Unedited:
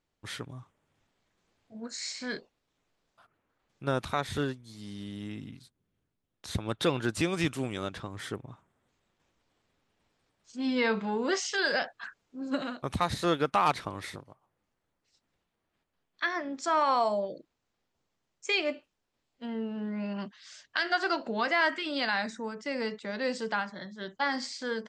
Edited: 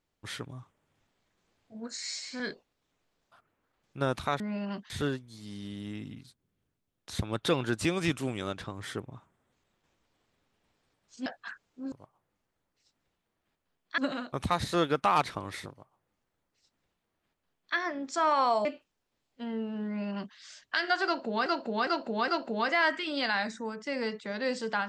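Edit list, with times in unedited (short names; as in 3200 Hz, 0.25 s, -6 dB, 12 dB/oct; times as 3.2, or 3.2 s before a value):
1.98–2.26 stretch 1.5×
10.62–11.82 cut
14.2–16.26 copy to 12.48
17.15–18.67 cut
19.88–20.38 copy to 4.26
21.07–21.48 loop, 4 plays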